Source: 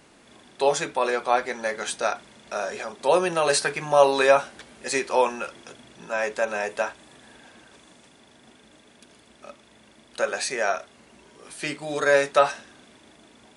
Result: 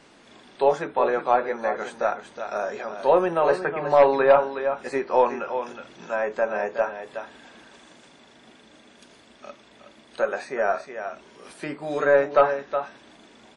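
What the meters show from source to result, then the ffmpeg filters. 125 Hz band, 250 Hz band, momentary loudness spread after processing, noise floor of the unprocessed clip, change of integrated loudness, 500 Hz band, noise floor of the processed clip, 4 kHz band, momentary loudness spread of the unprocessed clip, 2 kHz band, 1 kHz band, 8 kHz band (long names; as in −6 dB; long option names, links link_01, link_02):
−0.5 dB, +1.5 dB, 17 LU, −55 dBFS, +0.5 dB, +2.0 dB, −53 dBFS, −11.0 dB, 14 LU, −2.5 dB, +1.5 dB, below −15 dB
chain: -filter_complex "[0:a]asplit=2[link_01][link_02];[link_02]adelay=367.3,volume=-9dB,highshelf=frequency=4000:gain=-8.27[link_03];[link_01][link_03]amix=inputs=2:normalize=0,acrossover=split=1700[link_04][link_05];[link_05]acompressor=threshold=-47dB:ratio=8[link_06];[link_04][link_06]amix=inputs=2:normalize=0,volume=9.5dB,asoftclip=hard,volume=-9.5dB,equalizer=frequency=78:width=0.87:gain=-7.5,aeval=exprs='0.376*(cos(1*acos(clip(val(0)/0.376,-1,1)))-cos(1*PI/2))+0.00531*(cos(4*acos(clip(val(0)/0.376,-1,1)))-cos(4*PI/2))':channel_layout=same,highshelf=frequency=9400:gain=-9,volume=2dB" -ar 44100 -c:a wmav2 -b:a 32k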